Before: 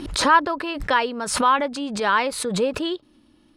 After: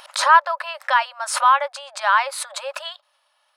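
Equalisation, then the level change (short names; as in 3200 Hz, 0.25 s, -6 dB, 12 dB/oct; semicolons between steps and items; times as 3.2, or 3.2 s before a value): brick-wall FIR high-pass 530 Hz; bell 1200 Hz +7.5 dB 1.8 oct; high shelf 4800 Hz +5.5 dB; -4.0 dB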